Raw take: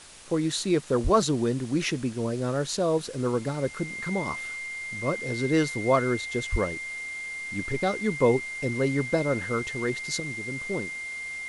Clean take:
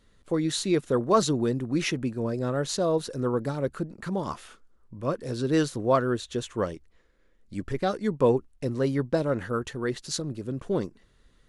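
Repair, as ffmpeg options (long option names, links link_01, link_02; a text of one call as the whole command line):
ffmpeg -i in.wav -filter_complex "[0:a]bandreject=frequency=2100:width=30,asplit=3[link_01][link_02][link_03];[link_01]afade=type=out:start_time=1.03:duration=0.02[link_04];[link_02]highpass=frequency=140:width=0.5412,highpass=frequency=140:width=1.3066,afade=type=in:start_time=1.03:duration=0.02,afade=type=out:start_time=1.15:duration=0.02[link_05];[link_03]afade=type=in:start_time=1.15:duration=0.02[link_06];[link_04][link_05][link_06]amix=inputs=3:normalize=0,asplit=3[link_07][link_08][link_09];[link_07]afade=type=out:start_time=6.51:duration=0.02[link_10];[link_08]highpass=frequency=140:width=0.5412,highpass=frequency=140:width=1.3066,afade=type=in:start_time=6.51:duration=0.02,afade=type=out:start_time=6.63:duration=0.02[link_11];[link_09]afade=type=in:start_time=6.63:duration=0.02[link_12];[link_10][link_11][link_12]amix=inputs=3:normalize=0,afwtdn=0.005,asetnsamples=nb_out_samples=441:pad=0,asendcmd='10.2 volume volume 4.5dB',volume=0dB" out.wav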